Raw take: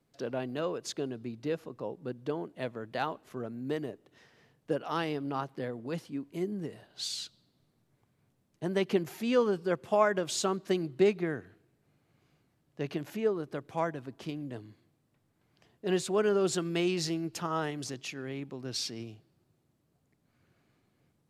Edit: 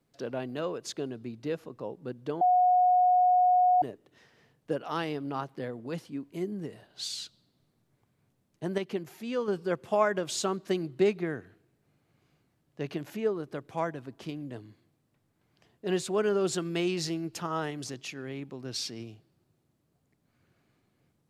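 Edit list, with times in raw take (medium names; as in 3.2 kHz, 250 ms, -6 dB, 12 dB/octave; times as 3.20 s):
2.41–3.82 s: bleep 727 Hz -19 dBFS
8.78–9.48 s: gain -5.5 dB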